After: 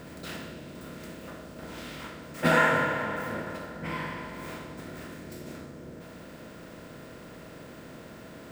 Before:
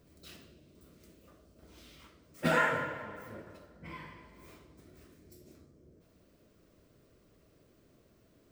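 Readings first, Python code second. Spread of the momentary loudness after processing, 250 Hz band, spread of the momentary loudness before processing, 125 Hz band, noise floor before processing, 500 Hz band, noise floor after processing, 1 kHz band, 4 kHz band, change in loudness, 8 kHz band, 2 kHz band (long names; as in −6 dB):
21 LU, +8.5 dB, 24 LU, +8.0 dB, −66 dBFS, +7.5 dB, −46 dBFS, +7.0 dB, +8.0 dB, +2.0 dB, +8.5 dB, +7.0 dB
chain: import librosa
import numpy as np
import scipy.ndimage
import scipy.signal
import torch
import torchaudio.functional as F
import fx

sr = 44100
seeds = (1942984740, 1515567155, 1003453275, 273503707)

y = fx.bin_compress(x, sr, power=0.6)
y = y * 10.0 ** (4.0 / 20.0)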